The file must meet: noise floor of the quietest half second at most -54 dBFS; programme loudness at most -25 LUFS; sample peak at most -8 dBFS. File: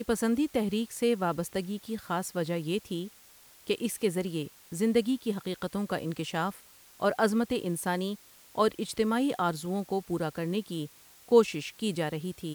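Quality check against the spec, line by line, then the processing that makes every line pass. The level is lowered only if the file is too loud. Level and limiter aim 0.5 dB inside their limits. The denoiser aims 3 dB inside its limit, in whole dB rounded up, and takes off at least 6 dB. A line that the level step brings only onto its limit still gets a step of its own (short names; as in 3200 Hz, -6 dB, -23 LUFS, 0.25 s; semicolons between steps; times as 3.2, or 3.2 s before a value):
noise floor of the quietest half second -56 dBFS: OK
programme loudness -30.5 LUFS: OK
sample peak -9.0 dBFS: OK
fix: none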